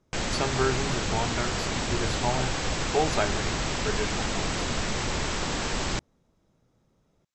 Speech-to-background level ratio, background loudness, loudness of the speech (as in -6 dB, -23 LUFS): -3.0 dB, -29.0 LUFS, -32.0 LUFS